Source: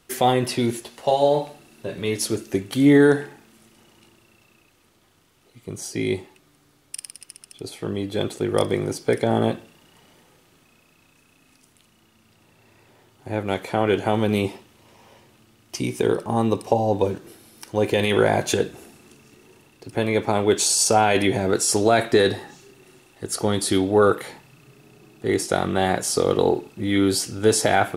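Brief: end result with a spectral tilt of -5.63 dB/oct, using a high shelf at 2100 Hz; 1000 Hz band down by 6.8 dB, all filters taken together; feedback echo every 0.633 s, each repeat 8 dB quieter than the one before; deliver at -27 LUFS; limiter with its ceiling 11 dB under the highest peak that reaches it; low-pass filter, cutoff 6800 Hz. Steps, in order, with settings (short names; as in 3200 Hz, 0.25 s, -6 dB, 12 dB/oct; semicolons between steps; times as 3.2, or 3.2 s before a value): LPF 6800 Hz; bell 1000 Hz -9 dB; high shelf 2100 Hz -8.5 dB; limiter -17.5 dBFS; feedback echo 0.633 s, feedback 40%, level -8 dB; gain +2.5 dB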